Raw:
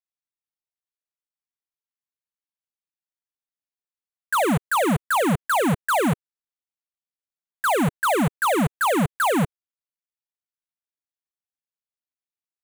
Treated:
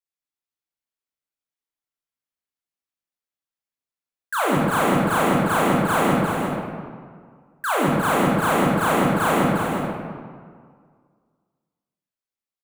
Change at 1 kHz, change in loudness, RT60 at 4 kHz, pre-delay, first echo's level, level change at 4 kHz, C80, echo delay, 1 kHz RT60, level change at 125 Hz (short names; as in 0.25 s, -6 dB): +2.0 dB, +1.5 dB, 1.2 s, 16 ms, -6.5 dB, +1.0 dB, -0.5 dB, 0.354 s, 1.9 s, +1.5 dB